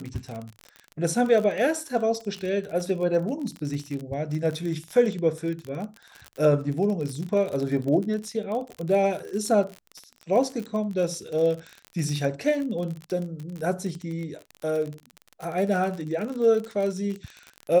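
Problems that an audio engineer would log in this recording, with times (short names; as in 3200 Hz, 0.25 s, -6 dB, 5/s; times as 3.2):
crackle 42/s -30 dBFS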